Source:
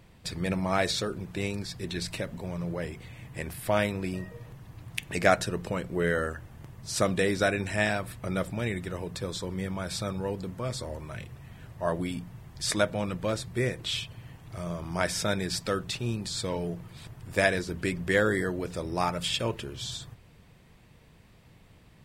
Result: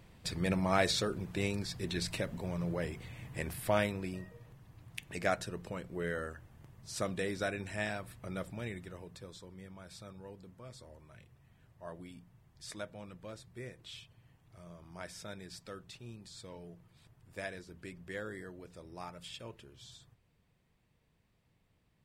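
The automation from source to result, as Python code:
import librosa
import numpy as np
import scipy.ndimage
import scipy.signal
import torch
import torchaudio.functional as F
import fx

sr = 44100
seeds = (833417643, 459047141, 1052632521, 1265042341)

y = fx.gain(x, sr, db=fx.line((3.56, -2.5), (4.39, -10.0), (8.65, -10.0), (9.5, -17.5)))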